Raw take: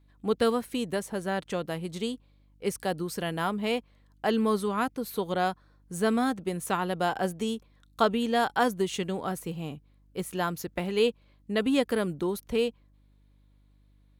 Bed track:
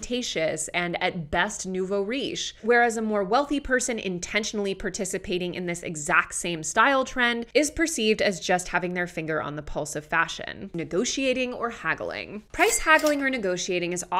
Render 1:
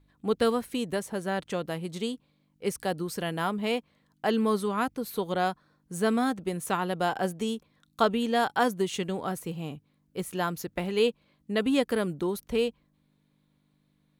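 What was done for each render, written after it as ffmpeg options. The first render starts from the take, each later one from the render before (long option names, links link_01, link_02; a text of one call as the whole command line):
ffmpeg -i in.wav -af "bandreject=frequency=50:width_type=h:width=4,bandreject=frequency=100:width_type=h:width=4" out.wav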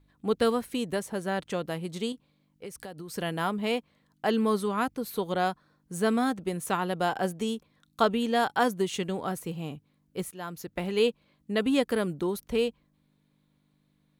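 ffmpeg -i in.wav -filter_complex "[0:a]asettb=1/sr,asplit=3[link_01][link_02][link_03];[link_01]atrim=end=2.124[link_04];[link_02]atrim=start=2.12:end=3.14,asetpts=PTS-STARTPTS,afade=type=in:duration=0.004:curve=qsin,afade=type=out:start_time=1.016:duration=0.004:curve=qsin,acompressor=threshold=-37dB:ratio=6:attack=3.2:release=140:knee=1:detection=peak[link_05];[link_03]atrim=start=3.136[link_06];[link_04][link_05]acrossfade=duration=0.004:curve1=hsin:curve2=qsin[link_07];[link_07][link_06]acrossfade=duration=0.004:curve1=qsin:curve2=hsin,asplit=2[link_08][link_09];[link_08]atrim=end=10.31,asetpts=PTS-STARTPTS,afade=type=out:start_time=10.306:duration=0.004:curve=hsin:silence=0.177828[link_10];[link_09]atrim=start=10.31,asetpts=PTS-STARTPTS,afade=type=in:duration=0.57:silence=0.177828[link_11];[link_10][link_11]concat=n=2:v=0:a=1" out.wav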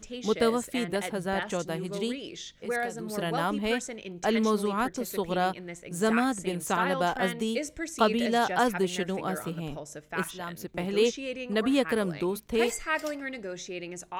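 ffmpeg -i in.wav -i bed.wav -filter_complex "[1:a]volume=-11dB[link_01];[0:a][link_01]amix=inputs=2:normalize=0" out.wav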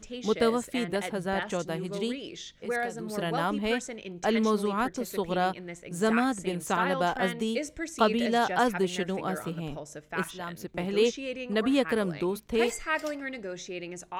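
ffmpeg -i in.wav -af "highshelf=frequency=8700:gain=-5.5" out.wav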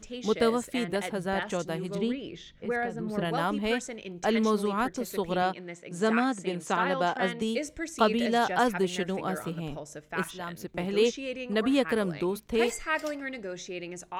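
ffmpeg -i in.wav -filter_complex "[0:a]asettb=1/sr,asplit=3[link_01][link_02][link_03];[link_01]atrim=end=1.954[link_04];[link_02]atrim=start=1.95:end=3.25,asetpts=PTS-STARTPTS,afade=type=in:duration=0.004:curve=qsin,afade=type=out:start_time=1.296:duration=0.004:curve=qsin,bass=frequency=250:gain=6,treble=frequency=4000:gain=-13[link_05];[link_03]atrim=start=3.246[link_06];[link_04][link_05]acrossfade=duration=0.004:curve1=hsin:curve2=qsin[link_07];[link_07][link_06]acrossfade=duration=0.004:curve1=qsin:curve2=hsin,asettb=1/sr,asplit=3[link_08][link_09][link_10];[link_08]atrim=end=5.424[link_11];[link_09]atrim=start=5.42:end=7.42,asetpts=PTS-STARTPTS,afade=type=in:duration=0.004:curve=qsin,afade=type=out:start_time=1.996:duration=0.004:curve=qsin,highpass=150,lowpass=7700[link_12];[link_10]atrim=start=7.416[link_13];[link_11][link_12]acrossfade=duration=0.004:curve1=hsin:curve2=qsin[link_14];[link_14][link_13]acrossfade=duration=0.004:curve1=qsin:curve2=hsin" out.wav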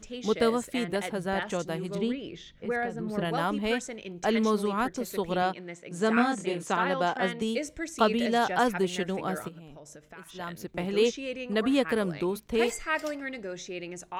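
ffmpeg -i in.wav -filter_complex "[0:a]asettb=1/sr,asplit=3[link_01][link_02][link_03];[link_01]atrim=end=6.144[link_04];[link_02]atrim=start=6.14:end=6.63,asetpts=PTS-STARTPTS,afade=type=in:duration=0.004:curve=qsin,afade=type=out:start_time=0.486:duration=0.004:curve=qsin,asplit=2[link_05][link_06];[link_06]adelay=25,volume=-3dB[link_07];[link_05][link_07]amix=inputs=2:normalize=0,atrim=end_sample=21609[link_08];[link_03]atrim=start=6.626[link_09];[link_04][link_08]acrossfade=duration=0.004:curve1=hsin:curve2=qsin[link_10];[link_10][link_09]acrossfade=duration=0.004:curve1=qsin:curve2=hsin,asplit=3[link_11][link_12][link_13];[link_11]afade=type=out:start_time=9.47:duration=0.02[link_14];[link_12]acompressor=threshold=-44dB:ratio=5:attack=3.2:release=140:knee=1:detection=peak,afade=type=in:start_time=9.47:duration=0.02,afade=type=out:start_time=10.34:duration=0.02[link_15];[link_13]afade=type=in:start_time=10.34:duration=0.02[link_16];[link_14][link_15][link_16]amix=inputs=3:normalize=0" out.wav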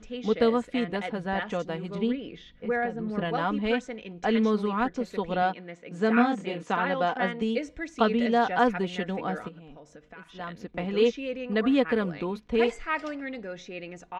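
ffmpeg -i in.wav -af "lowpass=3600,aecho=1:1:4.1:0.42" out.wav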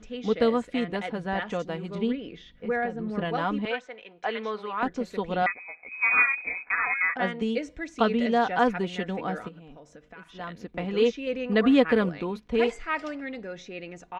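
ffmpeg -i in.wav -filter_complex "[0:a]asettb=1/sr,asplit=3[link_01][link_02][link_03];[link_01]atrim=end=3.654[link_04];[link_02]atrim=start=3.65:end=4.83,asetpts=PTS-STARTPTS,afade=type=in:duration=0.004:curve=qsin,afade=type=out:start_time=1.176:duration=0.004:curve=qsin,acrossover=split=460 4400:gain=0.112 1 0.178[link_05][link_06][link_07];[link_05][link_06][link_07]amix=inputs=3:normalize=0[link_08];[link_03]atrim=start=4.826[link_09];[link_04][link_08]acrossfade=duration=0.004:curve1=hsin:curve2=qsin[link_10];[link_10][link_09]acrossfade=duration=0.004:curve1=qsin:curve2=hsin,asettb=1/sr,asplit=3[link_11][link_12][link_13];[link_11]atrim=end=5.464[link_14];[link_12]atrim=start=5.46:end=7.16,asetpts=PTS-STARTPTS,afade=type=in:duration=0.004:curve=qsin,afade=type=out:start_time=1.696:duration=0.004:curve=qsin,lowpass=frequency=2300:width_type=q:width=0.5098,lowpass=frequency=2300:width_type=q:width=0.6013,lowpass=frequency=2300:width_type=q:width=0.9,lowpass=frequency=2300:width_type=q:width=2.563,afreqshift=-2700[link_15];[link_13]atrim=start=7.156[link_16];[link_14][link_15]acrossfade=duration=0.004:curve1=hsin:curve2=qsin[link_17];[link_17][link_16]acrossfade=duration=0.004:curve1=qsin:curve2=hsin,asplit=3[link_18][link_19][link_20];[link_18]atrim=end=11.272[link_21];[link_19]atrim=start=11.268:end=12.092,asetpts=PTS-STARTPTS,volume=3.5dB[link_22];[link_20]atrim=start=12.088[link_23];[link_21][link_22]acrossfade=duration=0.004:curve1=hsin:curve2=hsin[link_24];[link_24][link_23]acrossfade=duration=0.004:curve1=hsin:curve2=hsin" out.wav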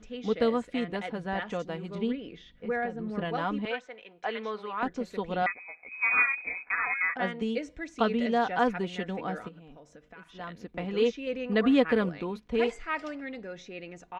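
ffmpeg -i in.wav -af "volume=-3dB" out.wav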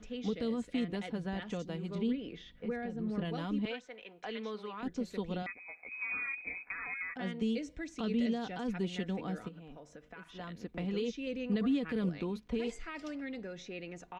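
ffmpeg -i in.wav -filter_complex "[0:a]alimiter=limit=-22dB:level=0:latency=1:release=10,acrossover=split=370|3000[link_01][link_02][link_03];[link_02]acompressor=threshold=-46dB:ratio=4[link_04];[link_01][link_04][link_03]amix=inputs=3:normalize=0" out.wav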